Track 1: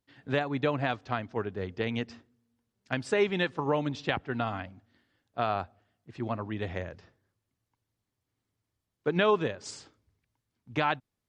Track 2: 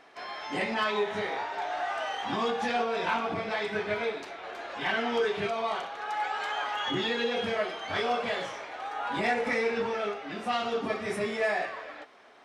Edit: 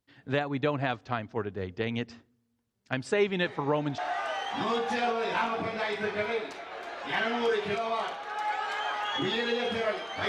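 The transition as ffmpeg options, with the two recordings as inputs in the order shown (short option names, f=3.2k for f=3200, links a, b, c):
-filter_complex "[1:a]asplit=2[a][b];[0:a]apad=whole_dur=10.28,atrim=end=10.28,atrim=end=3.982[c];[b]atrim=start=1.698:end=8[d];[a]atrim=start=1.16:end=1.7,asetpts=PTS-STARTPTS,volume=-13.5dB,afade=t=in:d=0.004:c=hsin,afade=t=out:st=0.536:d=0.004:c=hsin,adelay=3440[e];[c][d]acrossfade=d=0.004:c1=hsin:c2=hsin[f];[f][e]amix=inputs=2:normalize=0"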